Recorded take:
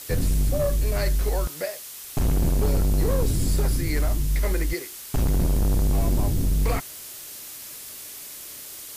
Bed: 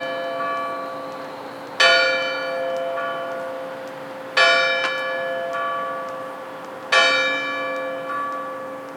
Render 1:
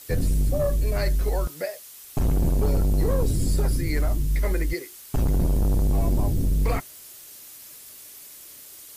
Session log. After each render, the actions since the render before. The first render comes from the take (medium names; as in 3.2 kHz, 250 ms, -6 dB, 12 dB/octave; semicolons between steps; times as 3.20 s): noise reduction 7 dB, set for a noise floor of -39 dBFS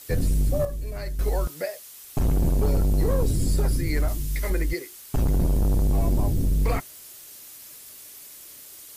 0.65–1.19 s: gain -8.5 dB; 4.08–4.50 s: tilt shelf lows -4.5 dB, about 1.5 kHz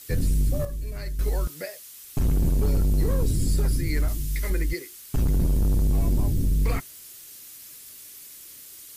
peaking EQ 710 Hz -7.5 dB 1.4 oct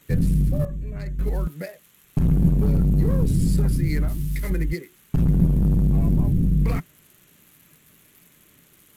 local Wiener filter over 9 samples; peaking EQ 170 Hz +12.5 dB 0.76 oct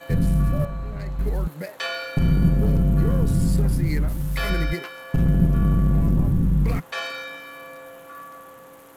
add bed -14.5 dB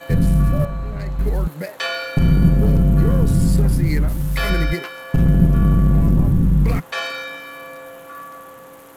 trim +4.5 dB